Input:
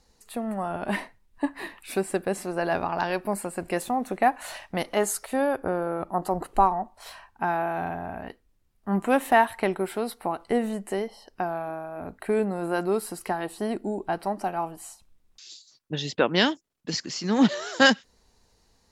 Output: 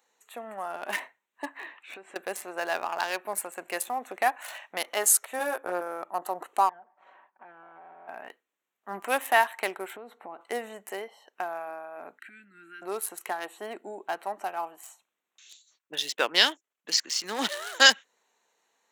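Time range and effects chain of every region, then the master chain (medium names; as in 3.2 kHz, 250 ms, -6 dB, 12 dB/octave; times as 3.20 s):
1.57–2.16 s: low-pass 4.3 kHz + compression 8:1, threshold -33 dBFS
5.39–5.81 s: doubling 17 ms -3 dB + three bands expanded up and down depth 40%
6.69–8.08 s: comb filter that takes the minimum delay 5.3 ms + low-pass 1.1 kHz + compression 8:1, threshold -41 dBFS
9.96–10.41 s: tilt EQ -4 dB/octave + compression 10:1, threshold -29 dBFS
12.19–12.82 s: Chebyshev band-stop 320–1400 Hz, order 4 + treble shelf 7.5 kHz -11.5 dB + compression 8:1, threshold -37 dBFS
whole clip: local Wiener filter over 9 samples; high-pass 350 Hz 12 dB/octave; tilt EQ +4 dB/octave; trim -2 dB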